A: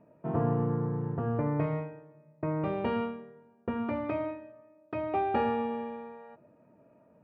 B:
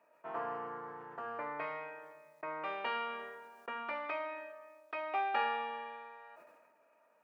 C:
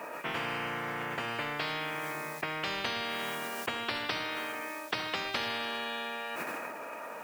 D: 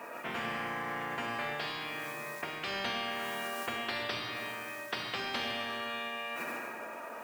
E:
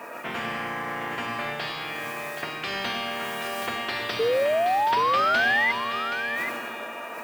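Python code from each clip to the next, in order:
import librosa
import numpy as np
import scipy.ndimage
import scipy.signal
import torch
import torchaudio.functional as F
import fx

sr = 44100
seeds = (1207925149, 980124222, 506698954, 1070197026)

y1 = scipy.signal.sosfilt(scipy.signal.butter(2, 1200.0, 'highpass', fs=sr, output='sos'), x)
y1 = fx.sustainer(y1, sr, db_per_s=36.0)
y1 = y1 * librosa.db_to_amplitude(4.0)
y2 = fx.spectral_comp(y1, sr, ratio=10.0)
y2 = y2 * librosa.db_to_amplitude(4.5)
y3 = fx.rev_fdn(y2, sr, rt60_s=1.7, lf_ratio=1.1, hf_ratio=0.65, size_ms=25.0, drr_db=1.5)
y3 = y3 * librosa.db_to_amplitude(-4.0)
y4 = fx.spec_paint(y3, sr, seeds[0], shape='rise', start_s=4.19, length_s=1.53, low_hz=440.0, high_hz=2100.0, level_db=-28.0)
y4 = y4 + 10.0 ** (-8.5 / 20.0) * np.pad(y4, (int(775 * sr / 1000.0), 0))[:len(y4)]
y4 = y4 * librosa.db_to_amplitude(5.5)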